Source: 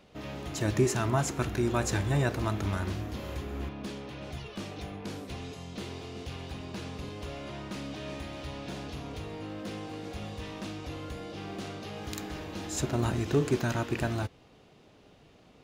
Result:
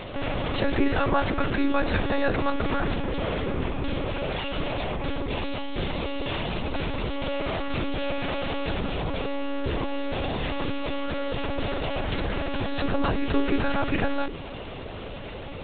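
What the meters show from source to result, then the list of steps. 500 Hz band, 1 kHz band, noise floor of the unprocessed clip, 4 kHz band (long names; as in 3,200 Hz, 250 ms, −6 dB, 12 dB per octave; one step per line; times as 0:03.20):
+6.5 dB, +8.5 dB, −58 dBFS, +8.5 dB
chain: Butterworth high-pass 160 Hz 96 dB per octave
mains-hum notches 50/100/150/200/250/300/350/400/450 Hz
one-pitch LPC vocoder at 8 kHz 280 Hz
envelope flattener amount 50%
level +4.5 dB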